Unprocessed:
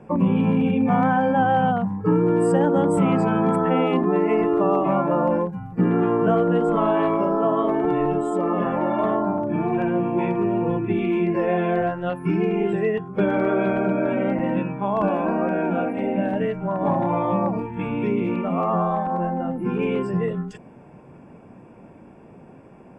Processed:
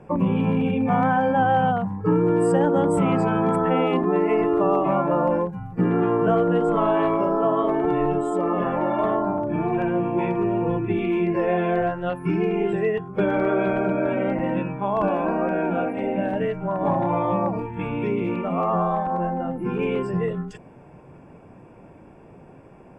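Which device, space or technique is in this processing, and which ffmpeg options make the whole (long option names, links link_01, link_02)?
low shelf boost with a cut just above: -af "lowshelf=frequency=67:gain=6,equalizer=frequency=220:width_type=o:width=0.51:gain=-5.5"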